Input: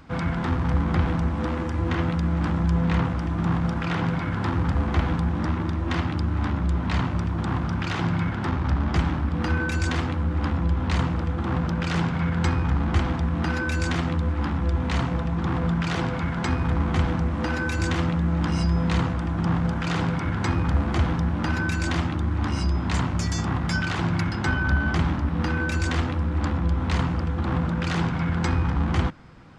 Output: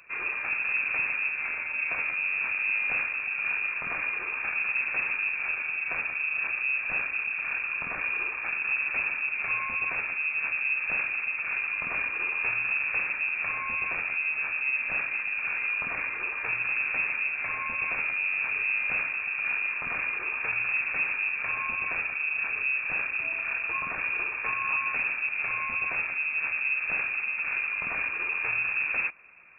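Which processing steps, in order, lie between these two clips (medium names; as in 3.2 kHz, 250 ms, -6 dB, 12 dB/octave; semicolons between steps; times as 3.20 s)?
tracing distortion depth 0.21 ms; wavefolder -16 dBFS; frequency inversion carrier 2.6 kHz; trim -6.5 dB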